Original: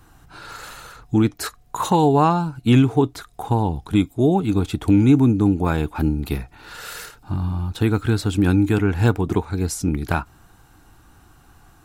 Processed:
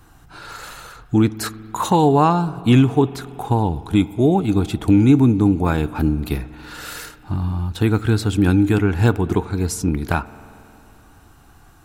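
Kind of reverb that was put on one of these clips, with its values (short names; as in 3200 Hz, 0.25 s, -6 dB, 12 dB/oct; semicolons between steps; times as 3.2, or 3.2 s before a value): spring tank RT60 3.1 s, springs 46 ms, chirp 75 ms, DRR 17 dB; gain +1.5 dB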